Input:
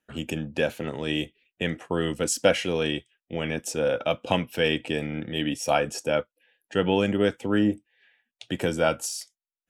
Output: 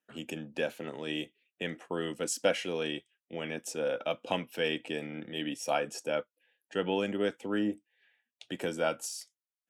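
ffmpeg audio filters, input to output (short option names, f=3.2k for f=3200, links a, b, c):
-af "highpass=200,volume=-7dB"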